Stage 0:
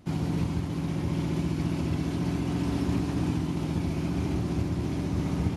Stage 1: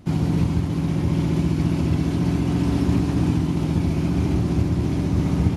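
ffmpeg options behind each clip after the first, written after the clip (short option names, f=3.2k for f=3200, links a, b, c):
-af "lowshelf=f=280:g=4.5,volume=4.5dB"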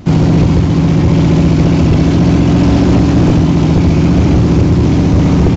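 -af "aeval=exprs='0.531*sin(PI/2*2.82*val(0)/0.531)':c=same,aresample=16000,aresample=44100,volume=1.5dB"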